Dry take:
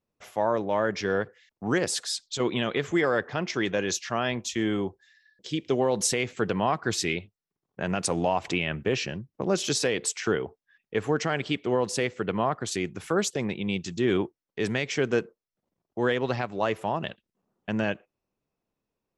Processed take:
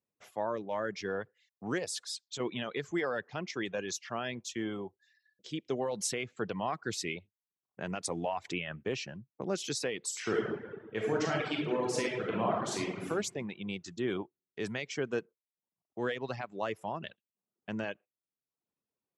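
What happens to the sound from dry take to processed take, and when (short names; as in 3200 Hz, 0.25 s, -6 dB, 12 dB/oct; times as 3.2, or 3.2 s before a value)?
10.07–13.08 reverb throw, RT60 1.6 s, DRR -4 dB
whole clip: reverb removal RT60 0.68 s; HPF 94 Hz; gain -8 dB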